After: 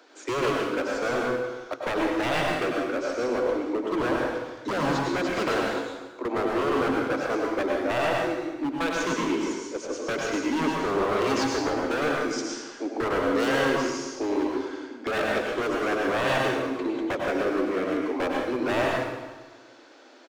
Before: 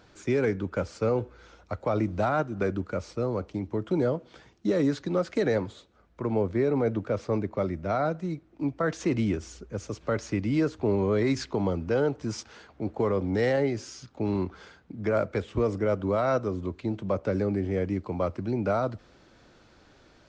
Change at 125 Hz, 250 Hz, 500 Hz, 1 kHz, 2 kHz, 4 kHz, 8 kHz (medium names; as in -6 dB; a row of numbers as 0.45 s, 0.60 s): -8.0 dB, +1.0 dB, +1.0 dB, +6.5 dB, +9.5 dB, +10.5 dB, no reading